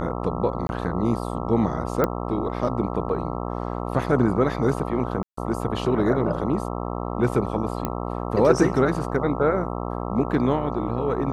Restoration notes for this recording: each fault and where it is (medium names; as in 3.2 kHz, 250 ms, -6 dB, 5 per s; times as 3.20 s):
buzz 60 Hz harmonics 22 -29 dBFS
0.67–0.69 s: dropout 21 ms
2.04 s: pop -9 dBFS
5.23–5.37 s: dropout 144 ms
7.85 s: pop -12 dBFS